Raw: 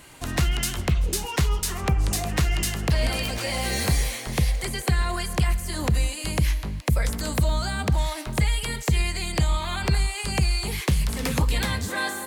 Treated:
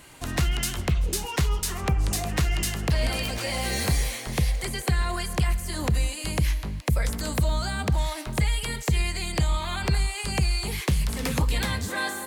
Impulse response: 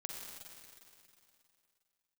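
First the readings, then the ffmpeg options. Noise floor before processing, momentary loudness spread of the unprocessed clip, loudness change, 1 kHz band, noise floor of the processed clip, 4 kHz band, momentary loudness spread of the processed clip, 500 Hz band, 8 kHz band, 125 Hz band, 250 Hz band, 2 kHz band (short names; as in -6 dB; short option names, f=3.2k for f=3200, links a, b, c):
-35 dBFS, 2 LU, -1.5 dB, -1.5 dB, -36 dBFS, -1.5 dB, 2 LU, -1.5 dB, -1.5 dB, -1.5 dB, -1.5 dB, -1.5 dB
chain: -af "acontrast=45,volume=-7dB"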